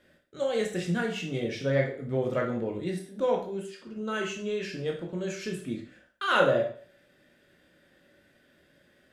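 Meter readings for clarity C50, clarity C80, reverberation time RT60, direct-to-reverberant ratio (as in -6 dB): 7.0 dB, 11.5 dB, 0.45 s, 0.5 dB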